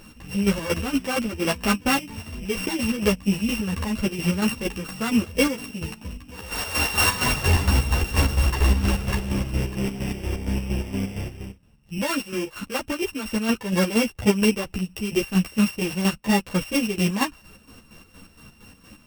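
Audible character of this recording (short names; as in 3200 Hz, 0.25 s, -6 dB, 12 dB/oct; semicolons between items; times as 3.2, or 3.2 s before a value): a buzz of ramps at a fixed pitch in blocks of 16 samples; chopped level 4.3 Hz, depth 60%, duty 50%; a shimmering, thickened sound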